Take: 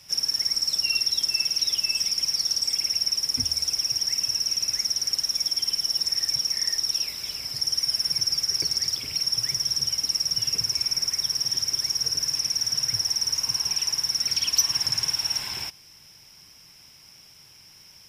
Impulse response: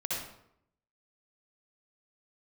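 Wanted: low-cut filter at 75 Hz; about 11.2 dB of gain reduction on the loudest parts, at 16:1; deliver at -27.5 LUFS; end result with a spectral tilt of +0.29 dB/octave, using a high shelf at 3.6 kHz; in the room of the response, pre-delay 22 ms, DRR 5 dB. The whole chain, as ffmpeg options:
-filter_complex "[0:a]highpass=75,highshelf=f=3600:g=4.5,acompressor=threshold=0.0794:ratio=16,asplit=2[s0][s1];[1:a]atrim=start_sample=2205,adelay=22[s2];[s1][s2]afir=irnorm=-1:irlink=0,volume=0.316[s3];[s0][s3]amix=inputs=2:normalize=0,volume=0.631"

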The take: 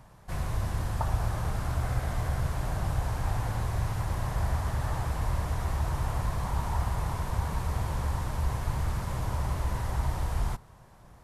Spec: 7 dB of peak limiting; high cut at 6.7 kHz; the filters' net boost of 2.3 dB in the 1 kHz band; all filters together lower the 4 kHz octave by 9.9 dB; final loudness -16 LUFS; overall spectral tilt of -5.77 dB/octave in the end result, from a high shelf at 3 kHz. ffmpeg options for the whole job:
-af "lowpass=6700,equalizer=f=1000:t=o:g=4,highshelf=f=3000:g=-9,equalizer=f=4000:t=o:g=-5.5,volume=7.08,alimiter=limit=0.562:level=0:latency=1"

